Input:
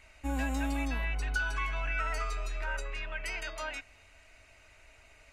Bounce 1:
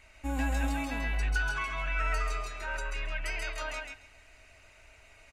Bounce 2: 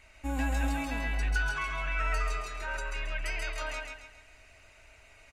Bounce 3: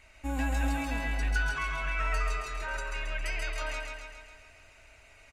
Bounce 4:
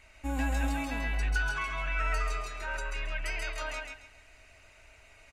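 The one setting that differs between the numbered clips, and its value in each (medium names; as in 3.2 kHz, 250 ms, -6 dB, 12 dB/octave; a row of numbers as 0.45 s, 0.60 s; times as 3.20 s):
feedback delay, feedback: 15%, 39%, 60%, 26%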